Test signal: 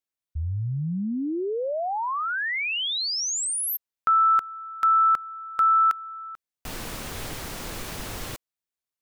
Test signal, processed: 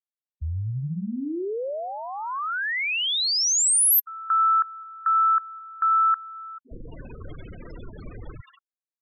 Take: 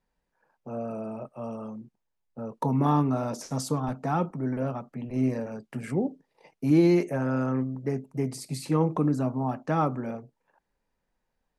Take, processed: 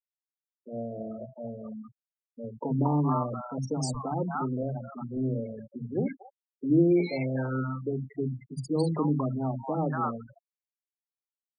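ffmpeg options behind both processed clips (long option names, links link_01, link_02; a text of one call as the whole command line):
ffmpeg -i in.wav -filter_complex "[0:a]acrossover=split=210|800[link_01][link_02][link_03];[link_01]adelay=60[link_04];[link_03]adelay=230[link_05];[link_04][link_02][link_05]amix=inputs=3:normalize=0,afftfilt=real='re*gte(hypot(re,im),0.0316)':imag='im*gte(hypot(re,im),0.0316)':win_size=1024:overlap=0.75,crystalizer=i=1.5:c=0" out.wav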